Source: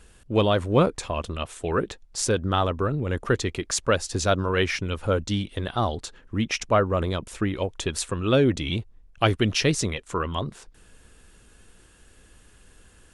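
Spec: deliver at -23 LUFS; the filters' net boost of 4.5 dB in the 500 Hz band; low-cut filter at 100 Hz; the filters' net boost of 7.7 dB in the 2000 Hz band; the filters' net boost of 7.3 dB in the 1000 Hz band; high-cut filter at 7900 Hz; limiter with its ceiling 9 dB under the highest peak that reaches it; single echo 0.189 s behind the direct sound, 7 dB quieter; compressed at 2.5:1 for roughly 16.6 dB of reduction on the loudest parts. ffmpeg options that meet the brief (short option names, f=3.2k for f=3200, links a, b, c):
-af "highpass=100,lowpass=7.9k,equalizer=f=500:t=o:g=3.5,equalizer=f=1k:t=o:g=6,equalizer=f=2k:t=o:g=8,acompressor=threshold=-35dB:ratio=2.5,alimiter=limit=-21.5dB:level=0:latency=1,aecho=1:1:189:0.447,volume=12dB"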